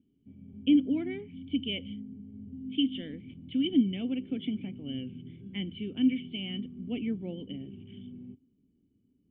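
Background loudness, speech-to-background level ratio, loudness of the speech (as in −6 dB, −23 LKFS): −45.0 LKFS, 13.5 dB, −31.5 LKFS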